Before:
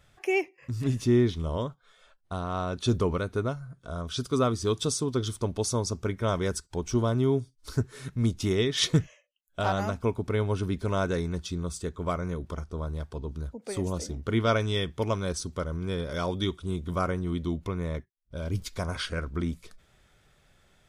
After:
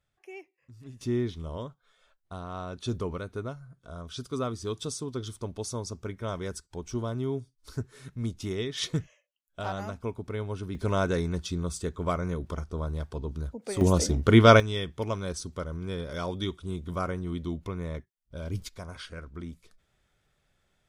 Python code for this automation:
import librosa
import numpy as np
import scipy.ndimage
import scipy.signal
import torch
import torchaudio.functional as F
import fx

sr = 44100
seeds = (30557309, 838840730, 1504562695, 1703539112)

y = fx.gain(x, sr, db=fx.steps((0.0, -18.5), (1.01, -6.5), (10.75, 1.0), (13.81, 9.0), (14.6, -3.0), (18.69, -9.5)))